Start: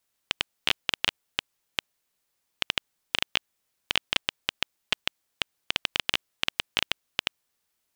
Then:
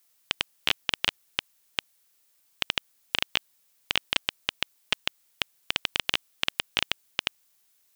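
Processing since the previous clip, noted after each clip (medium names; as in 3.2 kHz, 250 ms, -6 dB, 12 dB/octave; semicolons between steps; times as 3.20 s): added noise blue -67 dBFS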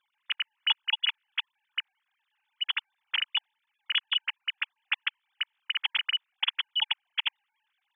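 formants replaced by sine waves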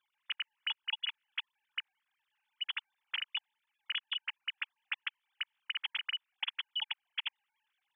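compression, threshold -28 dBFS, peak gain reduction 8.5 dB; trim -4.5 dB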